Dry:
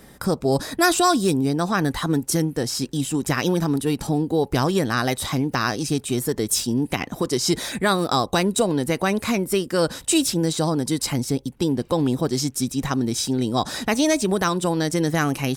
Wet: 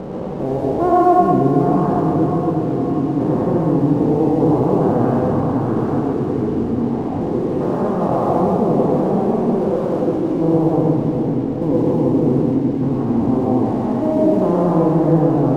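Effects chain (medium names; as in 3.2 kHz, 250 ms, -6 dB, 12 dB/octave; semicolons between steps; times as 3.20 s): spectrogram pixelated in time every 400 ms; inverse Chebyshev low-pass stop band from 5.4 kHz, stop band 80 dB; bass shelf 350 Hz -3 dB; crossover distortion -51 dBFS; echo that smears into a reverb 489 ms, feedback 66%, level -9 dB; plate-style reverb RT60 0.99 s, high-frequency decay 0.75×, pre-delay 85 ms, DRR -1.5 dB; trim +7.5 dB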